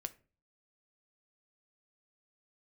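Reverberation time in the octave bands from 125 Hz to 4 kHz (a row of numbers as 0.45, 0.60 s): 0.60, 0.50, 0.40, 0.35, 0.30, 0.25 s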